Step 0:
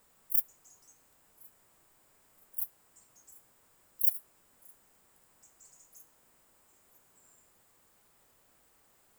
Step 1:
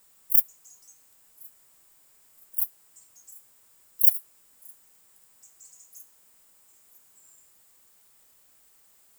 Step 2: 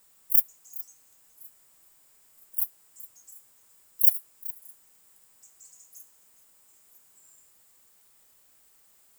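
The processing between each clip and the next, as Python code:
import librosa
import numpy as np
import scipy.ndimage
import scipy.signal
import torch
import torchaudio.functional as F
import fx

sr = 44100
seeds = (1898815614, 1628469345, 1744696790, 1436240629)

y1 = fx.high_shelf(x, sr, hz=2500.0, db=12.0)
y1 = y1 * librosa.db_to_amplitude(-3.5)
y2 = y1 + 10.0 ** (-17.5 / 20.0) * np.pad(y1, (int(416 * sr / 1000.0), 0))[:len(y1)]
y2 = y2 * librosa.db_to_amplitude(-1.0)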